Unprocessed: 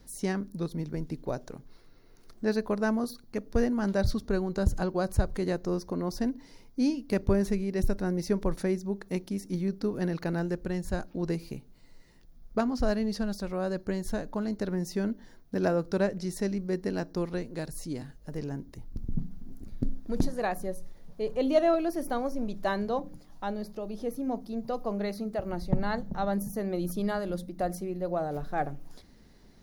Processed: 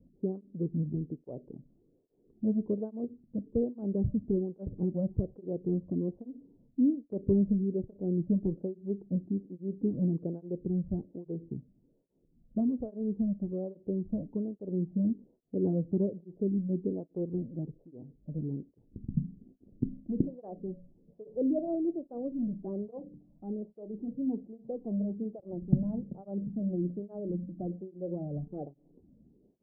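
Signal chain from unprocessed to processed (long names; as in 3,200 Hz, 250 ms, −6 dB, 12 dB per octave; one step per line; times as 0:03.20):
inverse Chebyshev low-pass filter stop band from 2,200 Hz, stop band 70 dB
dynamic equaliser 130 Hz, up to +5 dB, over −42 dBFS, Q 1
through-zero flanger with one copy inverted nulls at 1.2 Hz, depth 2.7 ms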